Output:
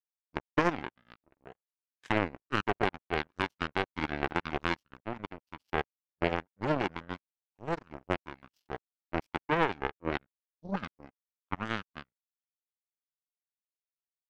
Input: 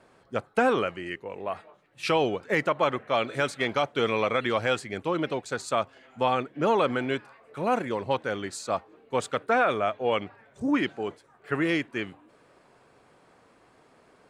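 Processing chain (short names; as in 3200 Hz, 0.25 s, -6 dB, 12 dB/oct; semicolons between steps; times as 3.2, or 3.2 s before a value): pitch shift -7 st; power-law curve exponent 3; gain +2.5 dB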